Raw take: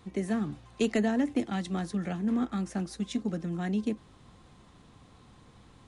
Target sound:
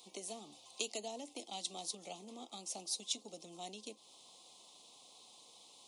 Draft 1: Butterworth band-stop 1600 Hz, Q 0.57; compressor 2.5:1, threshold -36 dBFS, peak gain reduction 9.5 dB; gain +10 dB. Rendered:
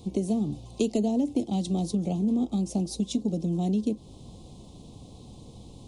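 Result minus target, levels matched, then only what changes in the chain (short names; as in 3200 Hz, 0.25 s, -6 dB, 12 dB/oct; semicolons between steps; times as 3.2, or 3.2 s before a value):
1000 Hz band -6.5 dB
add after compressor: HPF 1200 Hz 12 dB/oct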